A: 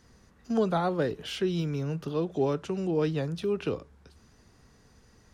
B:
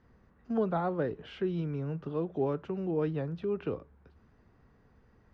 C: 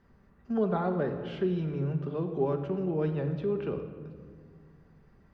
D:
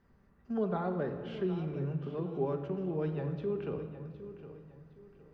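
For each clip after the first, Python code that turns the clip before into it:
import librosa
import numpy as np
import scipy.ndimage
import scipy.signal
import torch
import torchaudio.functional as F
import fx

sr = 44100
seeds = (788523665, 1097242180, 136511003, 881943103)

y1 = scipy.signal.sosfilt(scipy.signal.butter(2, 1900.0, 'lowpass', fs=sr, output='sos'), x)
y1 = F.gain(torch.from_numpy(y1), -3.5).numpy()
y2 = fx.room_shoebox(y1, sr, seeds[0], volume_m3=2900.0, walls='mixed', distance_m=1.2)
y3 = fx.echo_feedback(y2, sr, ms=762, feedback_pct=33, wet_db=-13.5)
y3 = F.gain(torch.from_numpy(y3), -4.5).numpy()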